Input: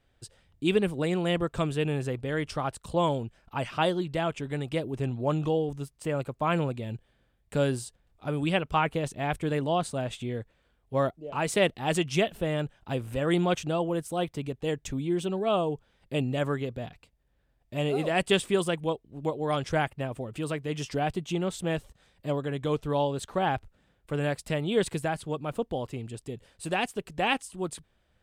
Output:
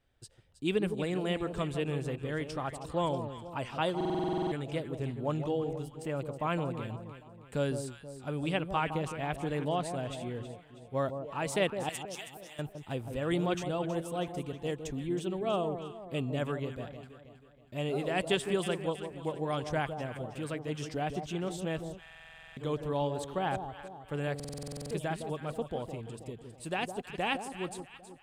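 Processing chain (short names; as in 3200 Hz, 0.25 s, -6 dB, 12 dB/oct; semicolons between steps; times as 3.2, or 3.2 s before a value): 11.89–12.59 pre-emphasis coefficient 0.97; echo with dull and thin repeats by turns 0.16 s, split 1000 Hz, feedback 65%, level -7.5 dB; stuck buffer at 3.96/22.01/24.35, samples 2048, times 11; gain -5.5 dB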